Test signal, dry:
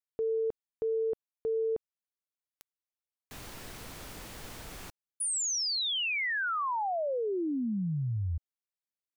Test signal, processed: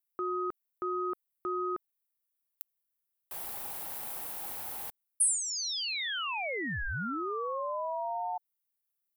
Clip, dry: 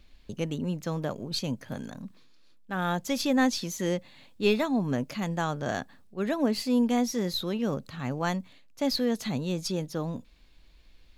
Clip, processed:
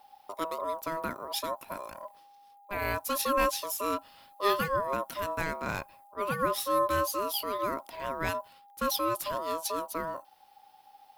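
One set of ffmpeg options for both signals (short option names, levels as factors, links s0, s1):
-af "aexciter=amount=6.1:drive=4.4:freq=9400,aeval=exprs='val(0)*sin(2*PI*810*n/s)':c=same"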